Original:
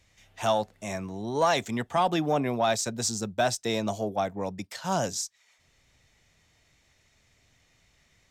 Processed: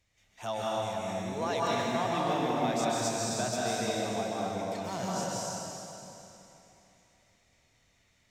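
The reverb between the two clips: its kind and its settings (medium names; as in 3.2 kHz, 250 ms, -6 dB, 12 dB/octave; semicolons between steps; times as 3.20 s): plate-style reverb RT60 3.2 s, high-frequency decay 0.95×, pre-delay 120 ms, DRR -6.5 dB; trim -10.5 dB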